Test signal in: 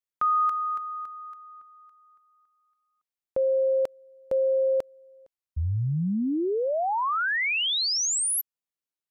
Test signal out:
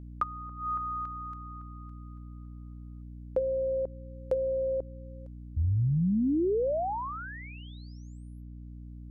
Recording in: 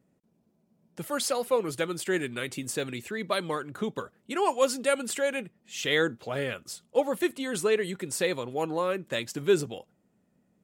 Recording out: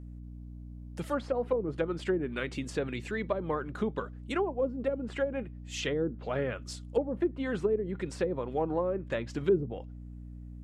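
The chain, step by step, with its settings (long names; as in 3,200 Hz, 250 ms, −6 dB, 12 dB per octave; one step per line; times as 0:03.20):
treble cut that deepens with the level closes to 390 Hz, closed at −22.5 dBFS
mains hum 60 Hz, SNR 11 dB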